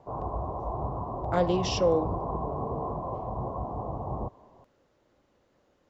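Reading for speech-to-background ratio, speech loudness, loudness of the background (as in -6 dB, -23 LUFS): 6.5 dB, -27.5 LUFS, -34.0 LUFS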